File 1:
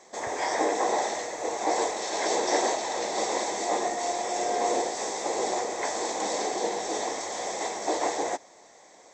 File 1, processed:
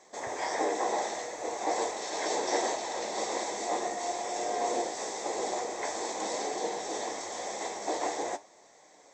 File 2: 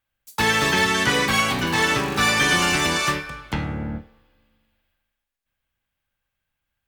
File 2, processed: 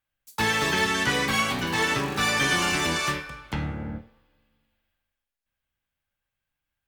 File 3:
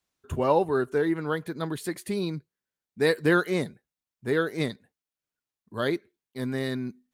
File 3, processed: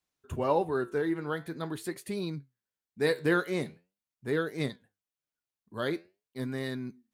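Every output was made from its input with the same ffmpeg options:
-af "flanger=delay=6.5:depth=8.4:regen=78:speed=0.45:shape=sinusoidal"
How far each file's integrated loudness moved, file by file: −4.5, −4.5, −4.5 LU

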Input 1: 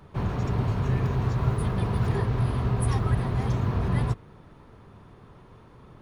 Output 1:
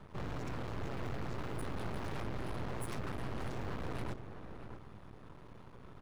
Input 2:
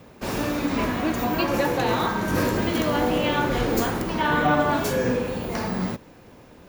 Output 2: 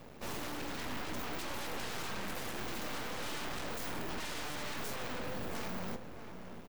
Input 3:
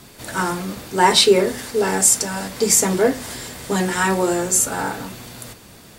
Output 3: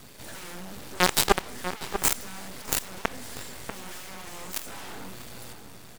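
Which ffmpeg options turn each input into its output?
-filter_complex "[0:a]aeval=exprs='0.891*(cos(1*acos(clip(val(0)/0.891,-1,1)))-cos(1*PI/2))+0.0631*(cos(6*acos(clip(val(0)/0.891,-1,1)))-cos(6*PI/2))+0.316*(cos(8*acos(clip(val(0)/0.891,-1,1)))-cos(8*PI/2))':channel_layout=same,aeval=exprs='max(val(0),0)':channel_layout=same,asplit=2[link_01][link_02];[link_02]adelay=641.4,volume=-9dB,highshelf=frequency=4000:gain=-14.4[link_03];[link_01][link_03]amix=inputs=2:normalize=0"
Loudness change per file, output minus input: −16.0, −16.5, −11.5 LU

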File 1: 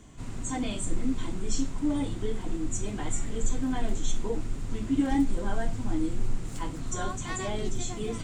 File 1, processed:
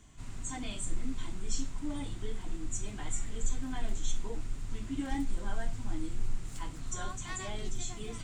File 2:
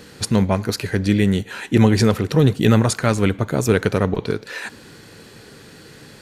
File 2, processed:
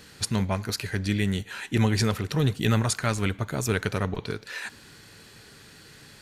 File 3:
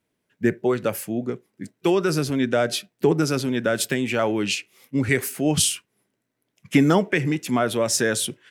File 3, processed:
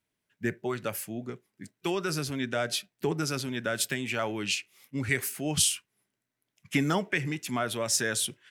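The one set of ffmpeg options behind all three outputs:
-af "equalizer=frequency=330:width_type=o:width=2.9:gain=-7.5,bandreject=frequency=500:width=15,volume=-3.5dB"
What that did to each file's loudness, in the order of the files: −7.5, −8.5, −7.5 LU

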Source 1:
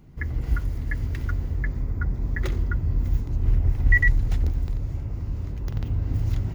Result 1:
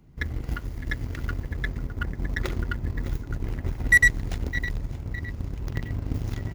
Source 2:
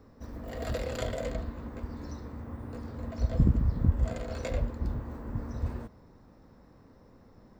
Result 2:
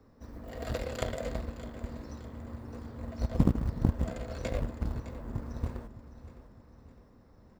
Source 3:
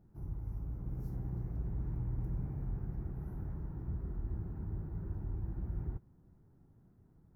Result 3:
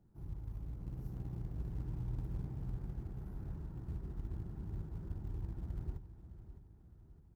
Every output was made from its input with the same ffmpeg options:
-filter_complex "[0:a]acrossover=split=170[link_01][link_02];[link_01]acompressor=threshold=-27dB:ratio=8[link_03];[link_03][link_02]amix=inputs=2:normalize=0,asplit=2[link_04][link_05];[link_05]acrusher=bits=5:mode=log:mix=0:aa=0.000001,volume=-11dB[link_06];[link_04][link_06]amix=inputs=2:normalize=0,aecho=1:1:610|1220|1830|2440|3050:0.266|0.128|0.0613|0.0294|0.0141,aeval=exprs='0.335*(cos(1*acos(clip(val(0)/0.335,-1,1)))-cos(1*PI/2))+0.0299*(cos(7*acos(clip(val(0)/0.335,-1,1)))-cos(7*PI/2))':channel_layout=same,volume=2dB"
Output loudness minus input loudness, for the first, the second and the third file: −1.0, −2.0, −3.5 LU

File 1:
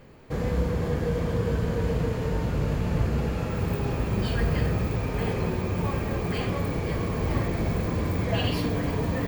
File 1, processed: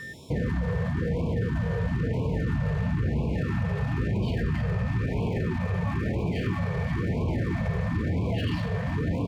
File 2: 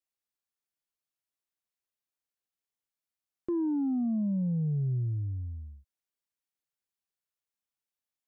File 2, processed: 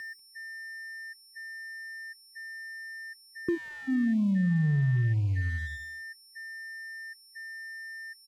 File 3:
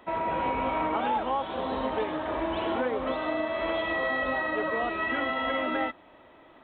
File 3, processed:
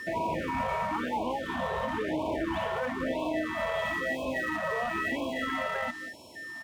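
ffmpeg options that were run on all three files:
-filter_complex "[0:a]asplit=2[link_01][link_02];[link_02]aeval=exprs='sgn(val(0))*max(abs(val(0))-0.00708,0)':channel_layout=same,volume=-10.5dB[link_03];[link_01][link_03]amix=inputs=2:normalize=0,aeval=exprs='val(0)+0.0141*sin(2*PI*1800*n/s)':channel_layout=same,highpass=76,bandreject=frequency=790:width=19,alimiter=limit=-20.5dB:level=0:latency=1:release=14,adynamicsmooth=sensitivity=2:basefreq=3400,equalizer=frequency=490:width_type=o:width=0.81:gain=-2,aecho=1:1:193:0.119,acompressor=threshold=-32dB:ratio=3,lowshelf=frequency=280:gain=5,aeval=exprs='sgn(val(0))*max(abs(val(0))-0.00316,0)':channel_layout=same,afftfilt=real='re*(1-between(b*sr/1024,270*pow(1600/270,0.5+0.5*sin(2*PI*1*pts/sr))/1.41,270*pow(1600/270,0.5+0.5*sin(2*PI*1*pts/sr))*1.41))':imag='im*(1-between(b*sr/1024,270*pow(1600/270,0.5+0.5*sin(2*PI*1*pts/sr))/1.41,270*pow(1600/270,0.5+0.5*sin(2*PI*1*pts/sr))*1.41))':win_size=1024:overlap=0.75,volume=4.5dB"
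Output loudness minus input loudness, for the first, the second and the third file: −0.5, −1.0, −2.5 LU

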